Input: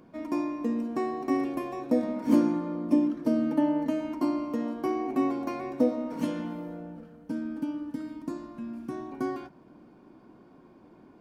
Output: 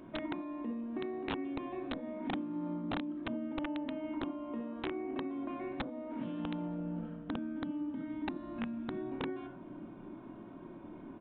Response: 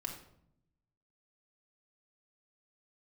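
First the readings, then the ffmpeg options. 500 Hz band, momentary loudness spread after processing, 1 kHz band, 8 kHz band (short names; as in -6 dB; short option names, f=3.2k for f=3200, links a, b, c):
-9.5 dB, 10 LU, -8.5 dB, n/a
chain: -filter_complex "[0:a]acompressor=threshold=-40dB:ratio=12[a];[1:a]atrim=start_sample=2205,atrim=end_sample=4410[b];[a][b]afir=irnorm=-1:irlink=0,aresample=8000,aeval=exprs='(mod(47.3*val(0)+1,2)-1)/47.3':c=same,aresample=44100,volume=4.5dB"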